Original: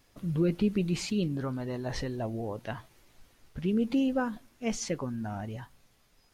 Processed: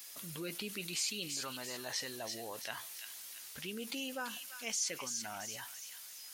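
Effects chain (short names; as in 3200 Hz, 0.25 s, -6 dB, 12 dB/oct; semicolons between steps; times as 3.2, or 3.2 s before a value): differentiator; on a send: thin delay 0.337 s, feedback 31%, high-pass 2300 Hz, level -9 dB; on the sum: fast leveller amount 50%; gain +3 dB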